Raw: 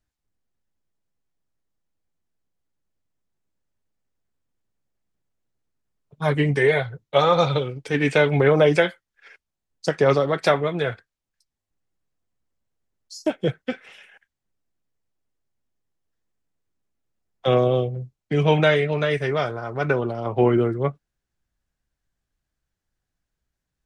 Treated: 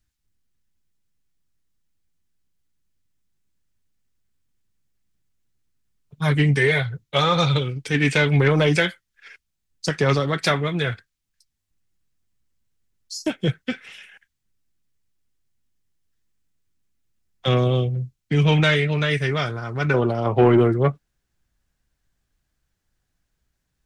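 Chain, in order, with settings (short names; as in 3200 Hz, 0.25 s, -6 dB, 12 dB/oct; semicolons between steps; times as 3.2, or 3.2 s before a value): bell 620 Hz -12 dB 2.1 oct, from 19.94 s -2.5 dB; soft clip -14.5 dBFS, distortion -19 dB; gain +7 dB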